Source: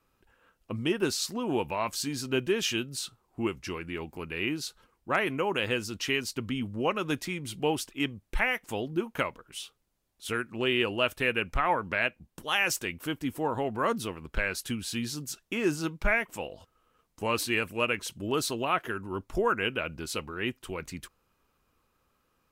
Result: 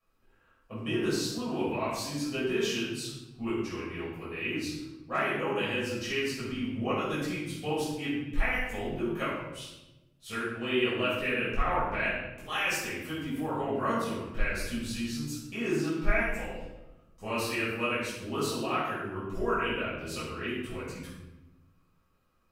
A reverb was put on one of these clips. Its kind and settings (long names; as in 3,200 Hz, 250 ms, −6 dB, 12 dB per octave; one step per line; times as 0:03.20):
rectangular room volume 450 cubic metres, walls mixed, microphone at 6 metres
level −15.5 dB